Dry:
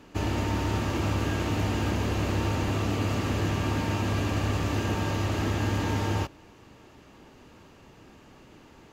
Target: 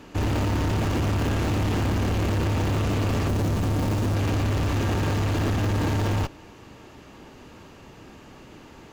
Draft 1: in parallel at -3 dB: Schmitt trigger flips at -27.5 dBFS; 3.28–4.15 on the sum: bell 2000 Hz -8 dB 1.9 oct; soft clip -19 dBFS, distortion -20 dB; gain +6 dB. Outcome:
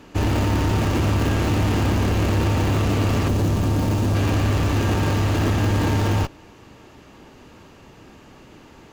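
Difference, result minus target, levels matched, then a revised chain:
soft clip: distortion -9 dB
in parallel at -3 dB: Schmitt trigger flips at -27.5 dBFS; 3.28–4.15 on the sum: bell 2000 Hz -8 dB 1.9 oct; soft clip -27 dBFS, distortion -11 dB; gain +6 dB

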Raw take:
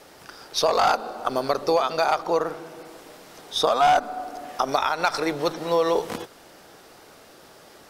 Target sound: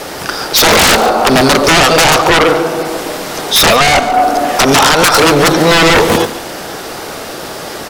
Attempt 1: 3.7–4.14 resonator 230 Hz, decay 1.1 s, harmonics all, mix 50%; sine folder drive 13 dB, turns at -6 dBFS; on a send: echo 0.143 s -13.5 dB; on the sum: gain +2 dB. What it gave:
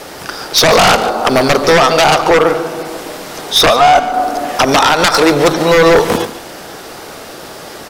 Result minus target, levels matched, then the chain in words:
sine folder: distortion -11 dB
3.7–4.14 resonator 230 Hz, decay 1.1 s, harmonics all, mix 50%; sine folder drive 19 dB, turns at -6 dBFS; on a send: echo 0.143 s -13.5 dB; on the sum: gain +2 dB

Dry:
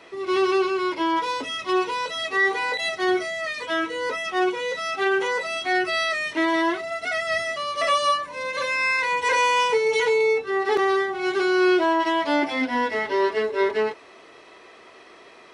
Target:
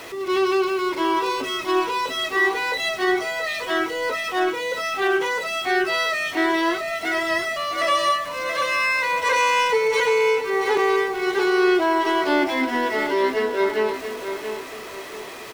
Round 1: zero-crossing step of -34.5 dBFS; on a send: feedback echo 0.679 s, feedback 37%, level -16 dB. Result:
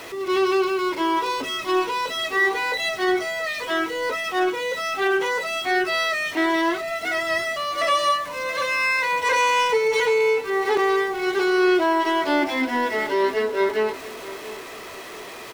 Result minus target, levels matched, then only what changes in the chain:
echo-to-direct -7.5 dB
change: feedback echo 0.679 s, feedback 37%, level -8.5 dB

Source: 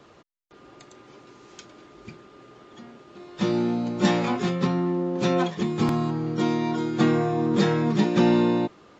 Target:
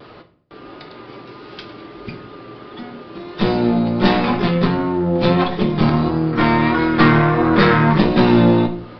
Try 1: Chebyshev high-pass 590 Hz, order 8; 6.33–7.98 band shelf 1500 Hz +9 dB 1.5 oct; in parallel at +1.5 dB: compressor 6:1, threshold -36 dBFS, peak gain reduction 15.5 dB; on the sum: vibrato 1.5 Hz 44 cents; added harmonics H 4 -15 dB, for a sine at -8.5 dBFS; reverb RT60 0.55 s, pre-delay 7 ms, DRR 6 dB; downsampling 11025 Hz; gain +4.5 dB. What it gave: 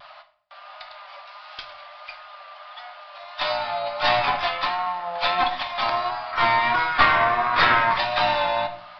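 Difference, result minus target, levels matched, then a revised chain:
500 Hz band -3.0 dB
6.33–7.98 band shelf 1500 Hz +9 dB 1.5 oct; in parallel at +1.5 dB: compressor 6:1, threshold -36 dBFS, peak gain reduction 19.5 dB; on the sum: vibrato 1.5 Hz 44 cents; added harmonics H 4 -15 dB, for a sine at -8.5 dBFS; reverb RT60 0.55 s, pre-delay 7 ms, DRR 6 dB; downsampling 11025 Hz; gain +4.5 dB

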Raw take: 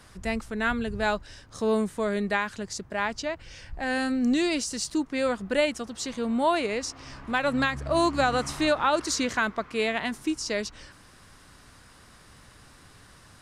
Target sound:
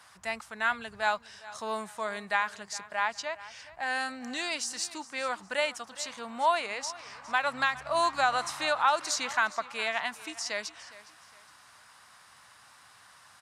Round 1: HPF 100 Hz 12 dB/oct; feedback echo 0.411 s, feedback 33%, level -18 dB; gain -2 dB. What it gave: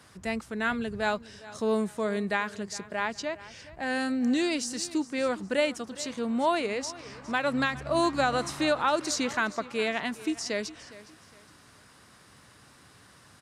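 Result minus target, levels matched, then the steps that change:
500 Hz band +4.0 dB
add after HPF: resonant low shelf 560 Hz -13 dB, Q 1.5

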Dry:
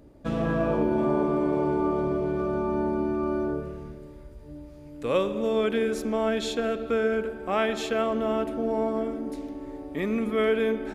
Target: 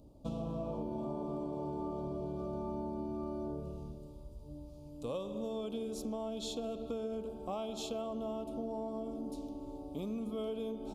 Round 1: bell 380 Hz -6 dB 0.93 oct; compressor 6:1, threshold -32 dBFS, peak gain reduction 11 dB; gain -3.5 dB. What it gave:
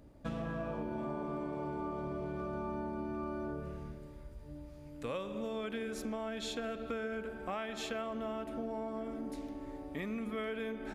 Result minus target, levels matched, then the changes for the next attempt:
2000 Hz band +17.0 dB
add first: Butterworth band-stop 1800 Hz, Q 0.78

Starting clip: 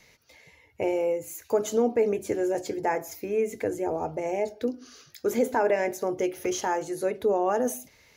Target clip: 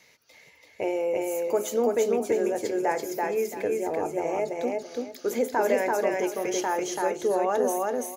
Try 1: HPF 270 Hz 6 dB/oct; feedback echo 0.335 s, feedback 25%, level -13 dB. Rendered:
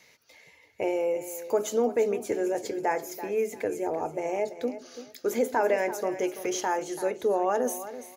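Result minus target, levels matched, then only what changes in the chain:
echo-to-direct -11 dB
change: feedback echo 0.335 s, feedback 25%, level -2 dB

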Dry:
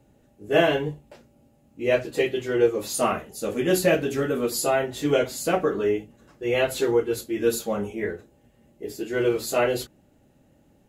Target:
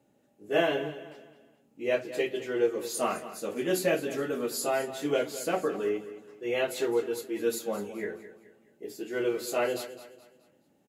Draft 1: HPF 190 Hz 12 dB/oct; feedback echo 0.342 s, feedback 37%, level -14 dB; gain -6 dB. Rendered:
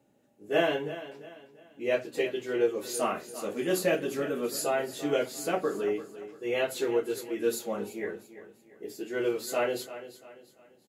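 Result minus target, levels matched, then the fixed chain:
echo 0.13 s late
HPF 190 Hz 12 dB/oct; feedback echo 0.212 s, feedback 37%, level -14 dB; gain -6 dB

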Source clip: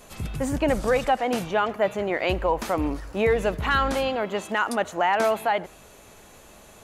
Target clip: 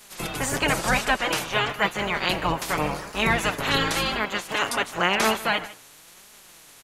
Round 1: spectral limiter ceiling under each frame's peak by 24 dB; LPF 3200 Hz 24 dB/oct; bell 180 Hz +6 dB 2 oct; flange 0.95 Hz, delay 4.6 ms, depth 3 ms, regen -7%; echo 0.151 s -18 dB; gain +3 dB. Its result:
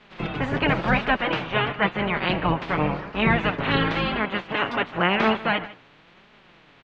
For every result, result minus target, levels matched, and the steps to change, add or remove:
250 Hz band +4.5 dB; 4000 Hz band -3.5 dB
remove: bell 180 Hz +6 dB 2 oct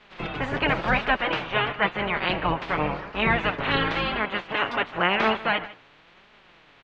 4000 Hz band -2.5 dB
remove: LPF 3200 Hz 24 dB/oct

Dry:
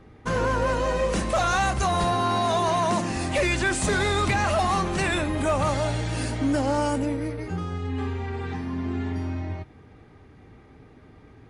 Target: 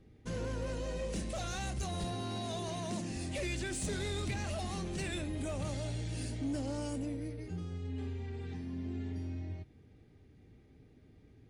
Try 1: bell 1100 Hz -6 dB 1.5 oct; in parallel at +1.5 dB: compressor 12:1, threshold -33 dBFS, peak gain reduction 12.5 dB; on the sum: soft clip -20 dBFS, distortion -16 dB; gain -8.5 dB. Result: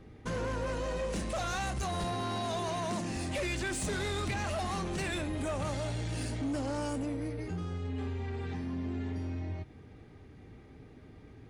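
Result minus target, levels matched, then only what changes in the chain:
compressor: peak gain reduction +12.5 dB; 1000 Hz band +4.5 dB
change: bell 1100 Hz -15 dB 1.5 oct; remove: compressor 12:1, threshold -33 dBFS, peak gain reduction 12.5 dB

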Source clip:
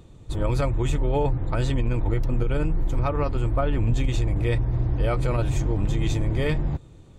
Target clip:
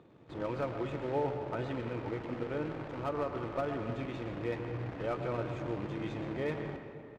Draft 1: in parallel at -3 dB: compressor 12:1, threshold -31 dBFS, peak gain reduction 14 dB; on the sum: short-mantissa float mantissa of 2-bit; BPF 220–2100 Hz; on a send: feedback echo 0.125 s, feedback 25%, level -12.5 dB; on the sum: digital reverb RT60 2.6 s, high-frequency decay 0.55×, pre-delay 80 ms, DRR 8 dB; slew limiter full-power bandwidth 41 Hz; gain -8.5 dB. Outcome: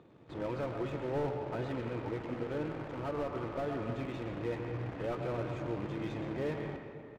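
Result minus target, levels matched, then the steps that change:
slew limiter: distortion +11 dB
change: slew limiter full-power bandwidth 84 Hz

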